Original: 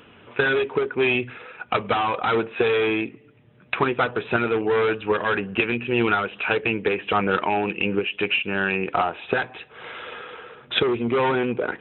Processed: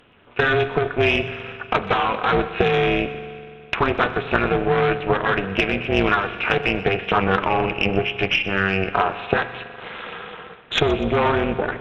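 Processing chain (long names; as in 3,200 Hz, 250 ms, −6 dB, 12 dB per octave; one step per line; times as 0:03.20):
stylus tracing distortion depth 0.042 ms
noise gate −42 dBFS, range −7 dB
spring reverb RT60 2.4 s, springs 41 ms, chirp 50 ms, DRR 11.5 dB
harmonic generator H 6 −32 dB, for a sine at −5 dBFS
amplitude modulation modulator 290 Hz, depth 85%
delay with a high-pass on its return 123 ms, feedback 55%, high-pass 2,100 Hz, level −16 dB
level +6 dB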